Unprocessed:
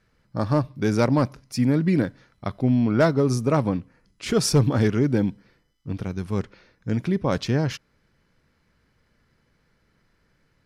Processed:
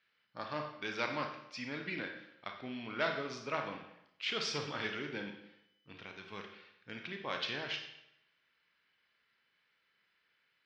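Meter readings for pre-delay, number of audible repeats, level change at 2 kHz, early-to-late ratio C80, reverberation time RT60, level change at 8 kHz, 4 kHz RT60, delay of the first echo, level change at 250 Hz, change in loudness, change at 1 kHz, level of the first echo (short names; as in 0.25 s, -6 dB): 25 ms, none, -4.5 dB, 9.0 dB, 0.80 s, -18.5 dB, 0.70 s, none, -23.5 dB, -16.5 dB, -10.5 dB, none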